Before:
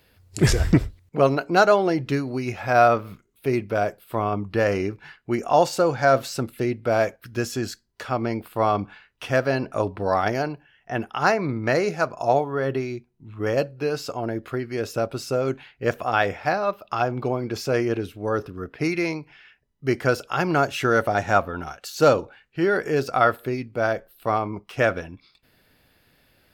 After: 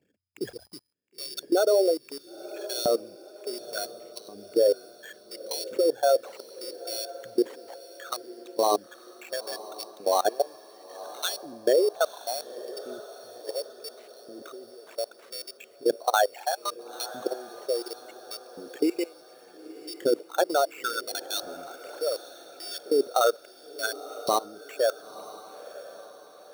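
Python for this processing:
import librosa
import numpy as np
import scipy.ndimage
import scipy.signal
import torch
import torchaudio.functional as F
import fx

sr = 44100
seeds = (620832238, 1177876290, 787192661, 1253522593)

y = fx.envelope_sharpen(x, sr, power=3.0)
y = fx.level_steps(y, sr, step_db=23)
y = fx.sample_hold(y, sr, seeds[0], rate_hz=5000.0, jitter_pct=0)
y = fx.filter_lfo_highpass(y, sr, shape='saw_up', hz=0.7, low_hz=220.0, high_hz=3500.0, q=1.7)
y = fx.echo_diffused(y, sr, ms=970, feedback_pct=47, wet_db=-15.5)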